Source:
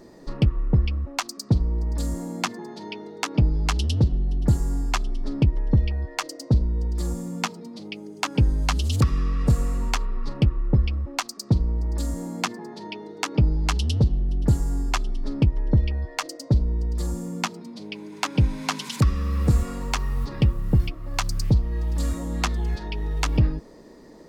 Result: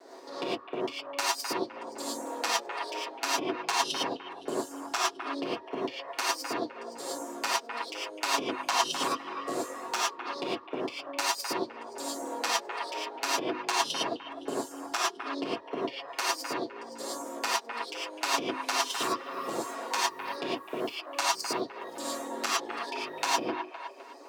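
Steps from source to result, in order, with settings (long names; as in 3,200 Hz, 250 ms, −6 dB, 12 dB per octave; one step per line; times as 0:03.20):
lower of the sound and its delayed copy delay 7.3 ms
on a send: delay with a band-pass on its return 256 ms, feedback 41%, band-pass 1,400 Hz, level −6.5 dB
on the sum: reverb reduction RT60 1.1 s
high-shelf EQ 8,800 Hz −6.5 dB
in parallel at −2 dB: downward compressor, threshold −31 dBFS, peak gain reduction 15.5 dB
on the sum: high-pass filter 360 Hz 24 dB per octave
parametric band 2,200 Hz −4 dB 1 octave
reverb whose tail is shaped and stops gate 130 ms rising, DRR −6.5 dB
level −5.5 dB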